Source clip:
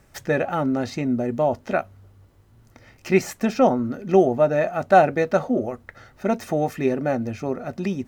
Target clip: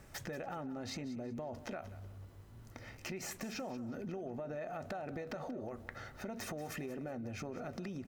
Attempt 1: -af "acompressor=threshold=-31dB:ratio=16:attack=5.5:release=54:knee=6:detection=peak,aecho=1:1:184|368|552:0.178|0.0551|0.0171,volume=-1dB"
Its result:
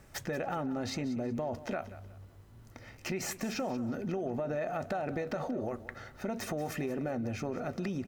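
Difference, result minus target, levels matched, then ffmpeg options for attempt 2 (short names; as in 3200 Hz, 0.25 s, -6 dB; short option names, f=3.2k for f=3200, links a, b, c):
compressor: peak gain reduction -8 dB
-af "acompressor=threshold=-39.5dB:ratio=16:attack=5.5:release=54:knee=6:detection=peak,aecho=1:1:184|368|552:0.178|0.0551|0.0171,volume=-1dB"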